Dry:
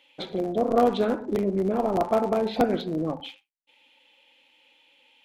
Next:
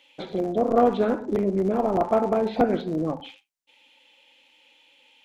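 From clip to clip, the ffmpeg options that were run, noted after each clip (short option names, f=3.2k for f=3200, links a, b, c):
-filter_complex "[0:a]equalizer=f=6.5k:t=o:w=1:g=5,acrossover=split=2500[a][b];[b]acompressor=threshold=-49dB:ratio=4:attack=1:release=60[c];[a][c]amix=inputs=2:normalize=0,volume=1.5dB"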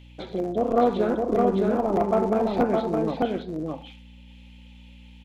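-af "aeval=exprs='val(0)+0.00562*(sin(2*PI*60*n/s)+sin(2*PI*2*60*n/s)/2+sin(2*PI*3*60*n/s)/3+sin(2*PI*4*60*n/s)/4+sin(2*PI*5*60*n/s)/5)':c=same,aecho=1:1:612:0.708,volume=-1.5dB"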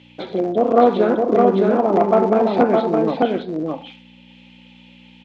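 -af "highpass=190,lowpass=4.7k,volume=7.5dB"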